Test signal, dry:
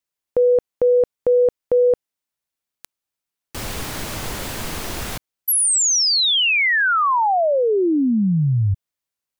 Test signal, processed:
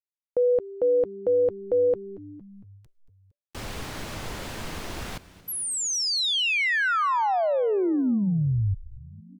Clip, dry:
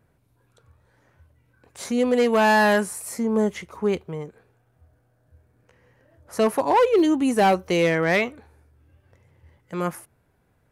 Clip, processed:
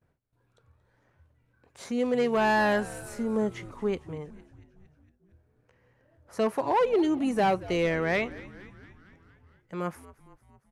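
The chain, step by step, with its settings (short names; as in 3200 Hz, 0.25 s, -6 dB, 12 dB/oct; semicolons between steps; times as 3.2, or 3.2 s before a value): gate with hold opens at -55 dBFS, closes at -58 dBFS, hold 58 ms, range -17 dB; high shelf 8400 Hz -11.5 dB; on a send: frequency-shifting echo 0.229 s, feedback 64%, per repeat -98 Hz, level -18.5 dB; on the sum: gain -6 dB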